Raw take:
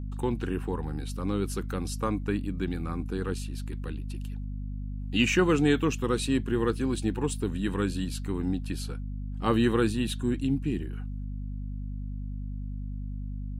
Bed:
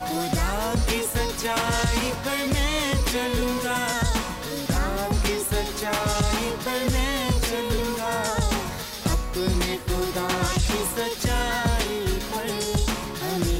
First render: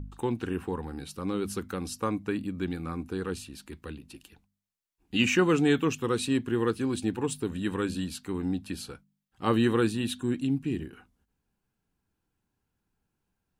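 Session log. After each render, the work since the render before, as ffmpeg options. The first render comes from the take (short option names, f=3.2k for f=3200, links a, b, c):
-af "bandreject=f=50:t=h:w=4,bandreject=f=100:t=h:w=4,bandreject=f=150:t=h:w=4,bandreject=f=200:t=h:w=4,bandreject=f=250:t=h:w=4"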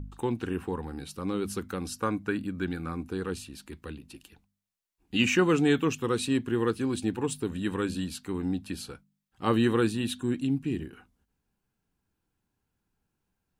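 -filter_complex "[0:a]asettb=1/sr,asplit=3[a][b][c];[a]atrim=end=1.864[d];[b]atrim=start=1.86:end=2.89,asetpts=PTS-STARTPTS,afade=t=in:d=0.004:c=qsin,afade=t=out:st=1.026:d=0.004:c=qsin,equalizer=f=1.5k:w=5.3:g=8.5[e];[c]atrim=start=2.886[f];[d][e]acrossfade=d=0.004:c1=hsin:c2=qsin[g];[g][f]acrossfade=d=0.004:c1=qsin:c2=hsin"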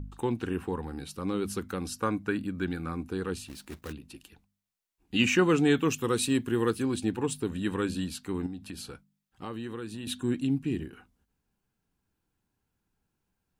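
-filter_complex "[0:a]asplit=3[a][b][c];[a]afade=t=out:st=3.47:d=0.02[d];[b]acrusher=bits=2:mode=log:mix=0:aa=0.000001,afade=t=in:st=3.47:d=0.02,afade=t=out:st=3.91:d=0.02[e];[c]afade=t=in:st=3.91:d=0.02[f];[d][e][f]amix=inputs=3:normalize=0,asettb=1/sr,asplit=3[g][h][i];[g]atrim=end=5.854[j];[h]atrim=start=5.85:end=6.83,asetpts=PTS-STARTPTS,afade=t=in:d=0.004:c=qsin,afade=t=out:st=0.976:d=0.004:c=qsin,highshelf=f=7.8k:g=10.5[k];[i]atrim=start=6.826[l];[j][k]acrossfade=d=0.004:c1=hsin:c2=qsin[m];[m][l]acrossfade=d=0.004:c1=qsin:c2=hsin,asettb=1/sr,asplit=3[n][o][p];[n]atrim=end=8.464[q];[o]atrim=start=8.46:end=10.07,asetpts=PTS-STARTPTS,afade=t=in:d=0.004:c=qsin,afade=t=out:st=1.606:d=0.004:c=qsin,acompressor=threshold=-36dB:ratio=4:attack=3.2:release=140:knee=1:detection=peak[r];[p]atrim=start=10.066[s];[q][r]acrossfade=d=0.004:c1=hsin:c2=qsin[t];[t][s]acrossfade=d=0.004:c1=qsin:c2=hsin"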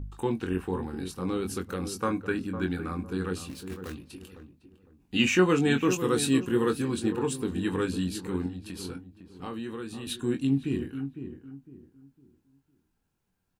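-filter_complex "[0:a]asplit=2[a][b];[b]adelay=22,volume=-6.5dB[c];[a][c]amix=inputs=2:normalize=0,asplit=2[d][e];[e]adelay=506,lowpass=f=950:p=1,volume=-9dB,asplit=2[f][g];[g]adelay=506,lowpass=f=950:p=1,volume=0.32,asplit=2[h][i];[i]adelay=506,lowpass=f=950:p=1,volume=0.32,asplit=2[j][k];[k]adelay=506,lowpass=f=950:p=1,volume=0.32[l];[f][h][j][l]amix=inputs=4:normalize=0[m];[d][m]amix=inputs=2:normalize=0"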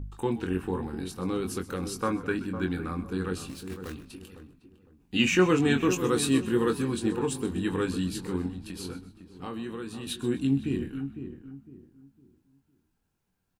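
-filter_complex "[0:a]asplit=4[a][b][c][d];[b]adelay=128,afreqshift=-51,volume=-16.5dB[e];[c]adelay=256,afreqshift=-102,volume=-24.9dB[f];[d]adelay=384,afreqshift=-153,volume=-33.3dB[g];[a][e][f][g]amix=inputs=4:normalize=0"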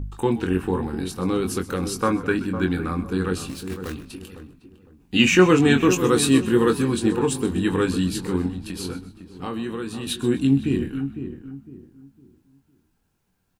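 -af "volume=7dB"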